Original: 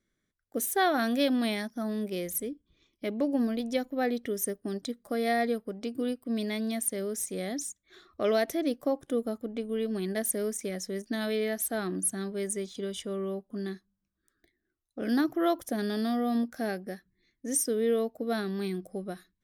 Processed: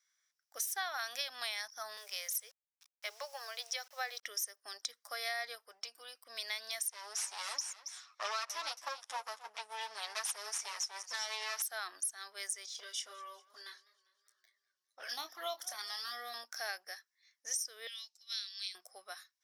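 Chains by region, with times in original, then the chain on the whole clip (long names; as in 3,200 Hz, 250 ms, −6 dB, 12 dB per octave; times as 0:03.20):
0:01.97–0:04.23: Butterworth high-pass 410 Hz 96 dB per octave + bit-depth reduction 10 bits, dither none
0:05.55–0:06.15: downward compressor 3 to 1, threshold −32 dBFS + notch comb filter 280 Hz
0:06.90–0:11.62: lower of the sound and its delayed copy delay 9.6 ms + low-pass filter 11,000 Hz 24 dB per octave + single-tap delay 274 ms −15.5 dB
0:12.66–0:16.34: flanger swept by the level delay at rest 9.6 ms, full sweep at −23.5 dBFS + double-tracking delay 25 ms −10.5 dB + feedback echo with a swinging delay time 200 ms, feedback 58%, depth 132 cents, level −22.5 dB
0:17.87–0:18.75: flat-topped band-pass 4,600 Hz, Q 1.1 + spectral tilt +2 dB per octave
whole clip: high-pass filter 900 Hz 24 dB per octave; parametric band 5,500 Hz +14.5 dB 0.37 octaves; downward compressor 10 to 1, threshold −35 dBFS; level +1 dB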